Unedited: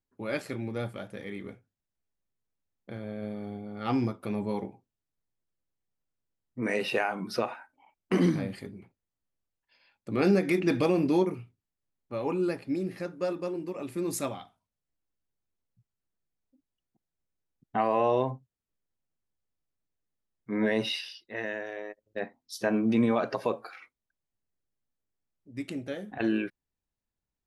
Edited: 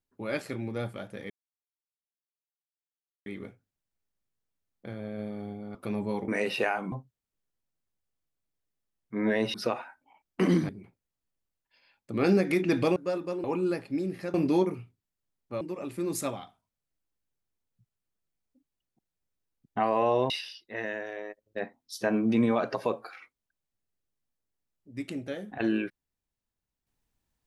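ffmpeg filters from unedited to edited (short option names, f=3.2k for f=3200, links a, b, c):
-filter_complex "[0:a]asplit=12[a][b][c][d][e][f][g][h][i][j][k][l];[a]atrim=end=1.3,asetpts=PTS-STARTPTS,afade=t=out:st=1.296:d=0.004:c=hsin,apad=pad_dur=1.96[m];[b]atrim=start=1.3:end=3.792,asetpts=PTS-STARTPTS,afade=t=in:d=0.004:c=hsin[n];[c]atrim=start=4.148:end=4.682[o];[d]atrim=start=6.618:end=7.262[p];[e]atrim=start=18.278:end=20.902[q];[f]atrim=start=7.258:end=8.412[r];[g]atrim=start=8.668:end=10.942[s];[h]atrim=start=13.108:end=13.592[t];[i]atrim=start=12.208:end=13.112[u];[j]atrim=start=10.938:end=12.212[v];[k]atrim=start=13.588:end=18.282[w];[l]atrim=start=20.898[x];[m][n]concat=n=2:v=0:a=1[y];[y][o]acrossfade=d=0.004:c1=hsin:c2=hsin[z];[z][p]acrossfade=d=0.004:c1=hsin:c2=hsin[aa];[aa][q]acrossfade=d=0.004:c1=hsin:c2=hsin[ab];[ab][r]acrossfade=d=0.004:c1=hsin:c2=hsin[ac];[ac][s]acrossfade=d=0.004:c1=hsin:c2=hsin[ad];[ad][t]acrossfade=d=0.004:c1=hsin:c2=hsin[ae];[ae][u]acrossfade=d=0.004:c1=hsin:c2=hsin[af];[af][v]acrossfade=d=0.004:c1=hsin:c2=hsin[ag];[ag][w]acrossfade=d=0.004:c1=hsin:c2=hsin[ah];[ah][x]acrossfade=d=0.004:c1=hsin:c2=hsin"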